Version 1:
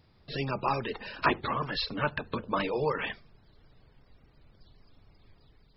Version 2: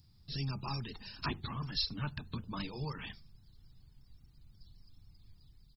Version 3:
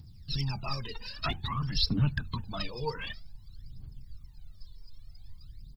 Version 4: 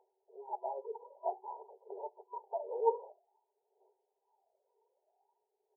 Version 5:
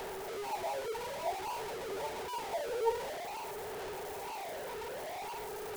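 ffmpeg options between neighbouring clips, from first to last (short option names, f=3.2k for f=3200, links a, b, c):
-af "firequalizer=gain_entry='entry(110,0);entry(530,-24);entry(780,-15);entry(2000,-15);entry(6200,9)':delay=0.05:min_phase=1,volume=1dB"
-af "aphaser=in_gain=1:out_gain=1:delay=2.2:decay=0.76:speed=0.52:type=triangular,volume=2.5dB"
-af "afftfilt=real='re*between(b*sr/4096,370,990)':imag='im*between(b*sr/4096,370,990)':win_size=4096:overlap=0.75,volume=5.5dB"
-af "aeval=exprs='val(0)+0.5*0.0266*sgn(val(0))':c=same,volume=-3.5dB"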